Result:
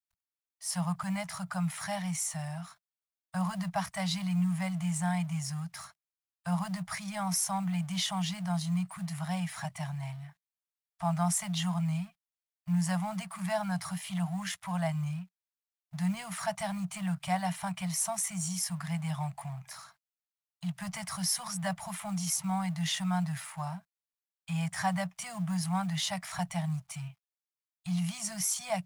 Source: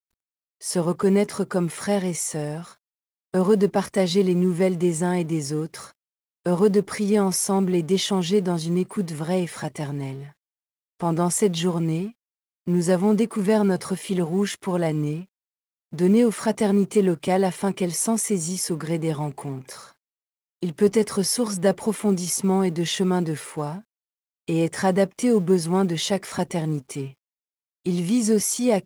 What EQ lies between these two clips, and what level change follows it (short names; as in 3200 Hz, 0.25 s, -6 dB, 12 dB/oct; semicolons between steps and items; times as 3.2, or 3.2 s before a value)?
Chebyshev band-stop 180–660 Hz, order 4; -5.0 dB